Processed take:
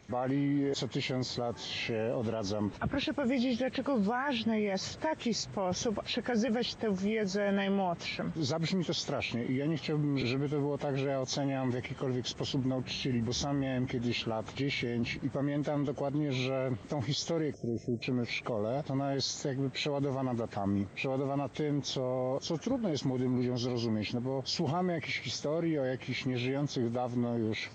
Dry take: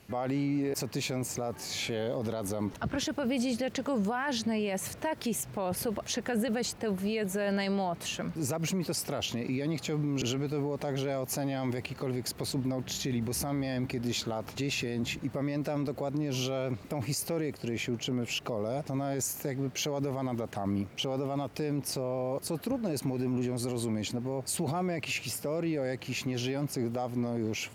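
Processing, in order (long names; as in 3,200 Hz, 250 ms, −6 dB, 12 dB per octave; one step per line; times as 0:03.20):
hearing-aid frequency compression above 1,600 Hz 1.5 to 1
gain on a spectral selection 0:17.54–0:18.02, 720–5,100 Hz −28 dB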